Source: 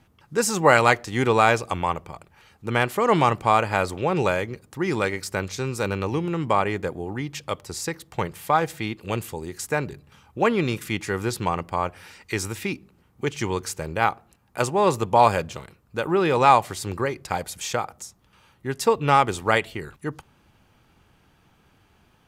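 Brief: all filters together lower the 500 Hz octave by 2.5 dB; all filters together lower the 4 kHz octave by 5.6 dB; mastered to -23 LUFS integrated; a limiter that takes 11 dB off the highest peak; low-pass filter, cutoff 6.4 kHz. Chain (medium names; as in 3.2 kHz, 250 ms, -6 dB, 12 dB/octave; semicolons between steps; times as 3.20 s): low-pass 6.4 kHz; peaking EQ 500 Hz -3 dB; peaking EQ 4 kHz -7 dB; trim +5 dB; peak limiter -8.5 dBFS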